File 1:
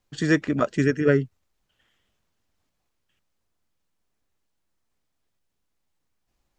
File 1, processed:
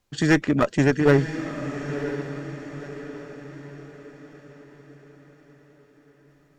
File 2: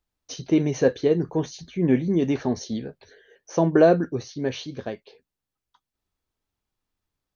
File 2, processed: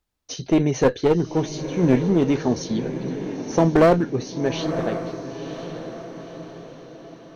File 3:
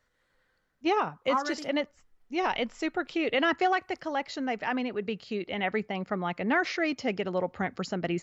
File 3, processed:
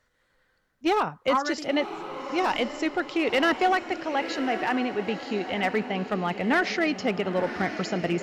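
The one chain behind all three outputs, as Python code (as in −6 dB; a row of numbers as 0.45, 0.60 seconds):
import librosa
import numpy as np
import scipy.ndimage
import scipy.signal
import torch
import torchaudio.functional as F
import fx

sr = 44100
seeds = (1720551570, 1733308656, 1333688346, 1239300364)

y = fx.clip_asym(x, sr, top_db=-20.5, bottom_db=-9.0)
y = fx.echo_diffused(y, sr, ms=1006, feedback_pct=46, wet_db=-10)
y = y * librosa.db_to_amplitude(3.5)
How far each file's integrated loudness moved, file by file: −1.0, +1.5, +3.5 LU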